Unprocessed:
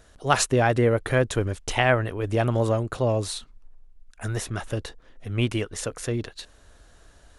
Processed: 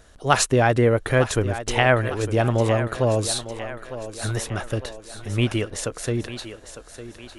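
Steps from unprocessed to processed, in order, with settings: 3.10–4.36 s: treble shelf 3.9 kHz +7 dB; on a send: thinning echo 904 ms, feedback 52%, high-pass 200 Hz, level -11.5 dB; on the sum: trim +2.5 dB

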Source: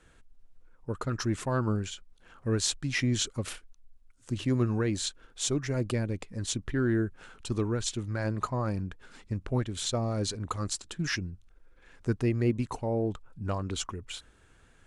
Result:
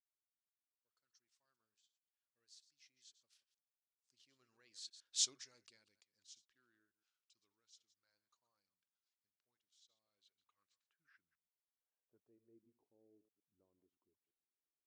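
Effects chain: chunks repeated in reverse 109 ms, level -13.5 dB; Doppler pass-by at 5.22 s, 15 m/s, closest 1 m; band-pass sweep 5 kHz -> 360 Hz, 9.78–12.64 s; trim +2 dB

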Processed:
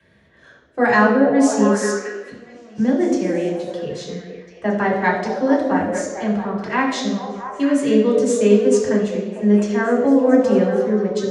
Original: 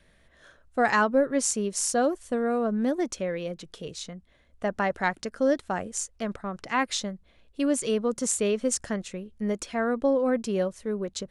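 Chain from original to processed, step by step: 1.91–2.78 s: inverted gate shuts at -30 dBFS, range -27 dB; repeats whose band climbs or falls 225 ms, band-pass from 360 Hz, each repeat 0.7 oct, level -2 dB; reverberation RT60 0.85 s, pre-delay 3 ms, DRR -4.5 dB; trim -7 dB

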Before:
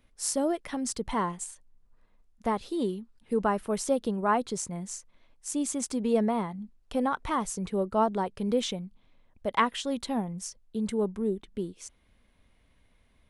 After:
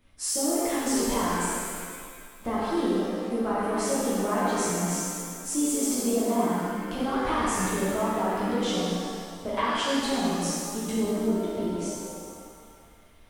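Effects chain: compression, threshold -31 dBFS, peak gain reduction 12 dB; pitch-shifted reverb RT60 2 s, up +7 st, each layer -8 dB, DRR -9.5 dB; trim -1 dB

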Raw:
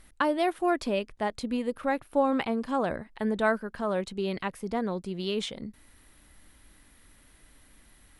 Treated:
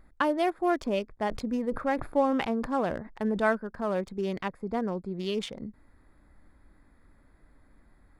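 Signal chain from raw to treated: local Wiener filter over 15 samples; band-stop 4 kHz, Q 14; 1.15–3.52 s: decay stretcher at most 100 dB/s

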